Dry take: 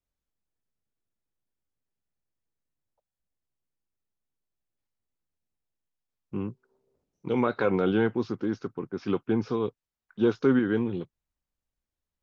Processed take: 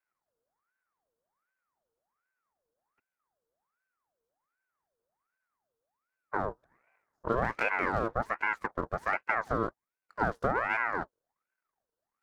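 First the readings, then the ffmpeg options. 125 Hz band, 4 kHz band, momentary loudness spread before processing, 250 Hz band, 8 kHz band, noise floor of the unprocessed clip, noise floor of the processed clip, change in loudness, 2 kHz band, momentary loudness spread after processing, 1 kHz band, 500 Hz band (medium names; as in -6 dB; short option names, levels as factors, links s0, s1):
-6.5 dB, -7.5 dB, 13 LU, -13.5 dB, no reading, under -85 dBFS, under -85 dBFS, -4.0 dB, +6.5 dB, 8 LU, +6.0 dB, -7.0 dB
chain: -af "acompressor=threshold=0.0398:ratio=6,aeval=exprs='abs(val(0))':c=same,equalizer=f=125:t=o:w=1:g=8,equalizer=f=500:t=o:w=1:g=8,equalizer=f=1000:t=o:w=1:g=11,equalizer=f=2000:t=o:w=1:g=-12,aeval=exprs='val(0)*sin(2*PI*1000*n/s+1000*0.55/1.3*sin(2*PI*1.3*n/s))':c=same"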